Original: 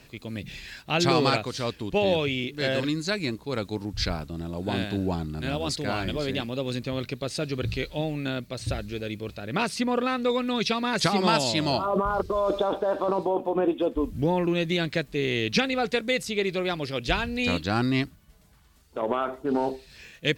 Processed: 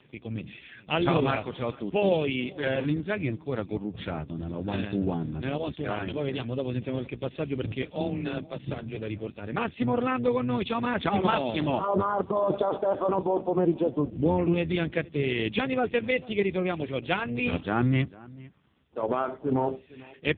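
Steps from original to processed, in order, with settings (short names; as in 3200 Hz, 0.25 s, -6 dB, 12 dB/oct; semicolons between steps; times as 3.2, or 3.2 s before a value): octaver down 1 oct, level -4 dB; 7.95–8.97 frequency shift +20 Hz; outdoor echo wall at 77 m, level -21 dB; AMR-NB 4.75 kbps 8000 Hz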